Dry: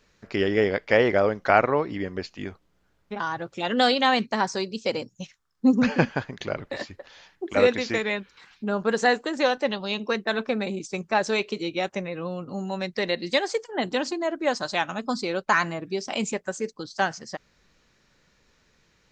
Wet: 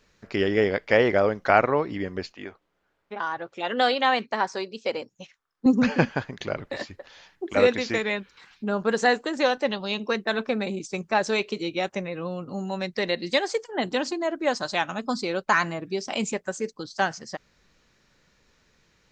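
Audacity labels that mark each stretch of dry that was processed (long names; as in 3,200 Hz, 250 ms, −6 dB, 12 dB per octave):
2.320000	5.660000	bass and treble bass −13 dB, treble −9 dB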